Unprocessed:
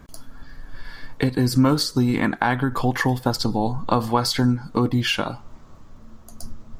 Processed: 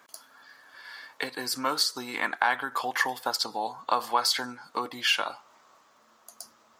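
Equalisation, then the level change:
high-pass filter 790 Hz 12 dB per octave
−1.0 dB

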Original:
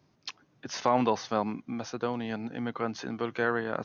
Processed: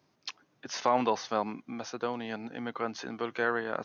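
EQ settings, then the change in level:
low-shelf EQ 180 Hz −12 dB
0.0 dB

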